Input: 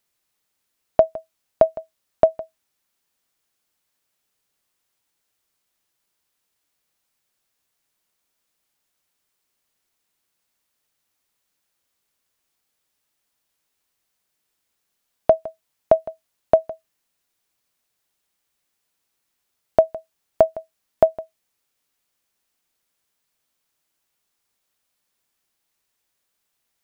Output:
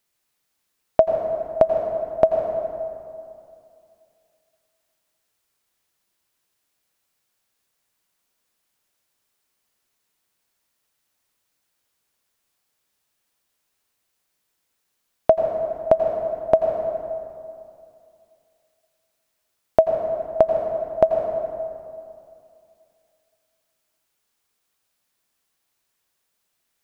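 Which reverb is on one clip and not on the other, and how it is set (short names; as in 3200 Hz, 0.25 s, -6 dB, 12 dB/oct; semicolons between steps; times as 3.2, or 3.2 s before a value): plate-style reverb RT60 2.5 s, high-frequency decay 0.6×, pre-delay 75 ms, DRR 3 dB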